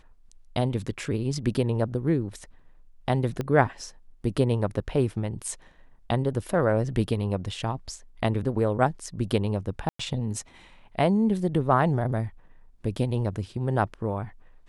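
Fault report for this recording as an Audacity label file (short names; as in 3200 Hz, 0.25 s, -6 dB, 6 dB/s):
3.410000	3.410000	pop -17 dBFS
9.890000	9.990000	gap 0.104 s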